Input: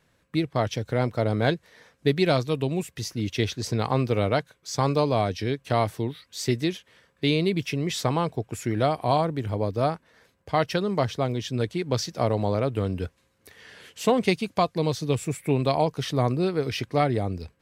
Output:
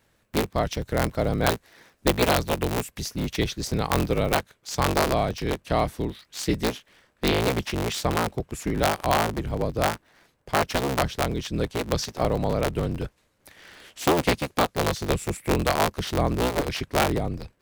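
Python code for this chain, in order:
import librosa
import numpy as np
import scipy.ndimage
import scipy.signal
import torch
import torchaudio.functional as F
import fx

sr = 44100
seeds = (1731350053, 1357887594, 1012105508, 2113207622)

y = fx.cycle_switch(x, sr, every=3, mode='inverted')
y = fx.high_shelf(y, sr, hz=12000.0, db=fx.steps((0.0, 9.5), (4.36, 2.5)))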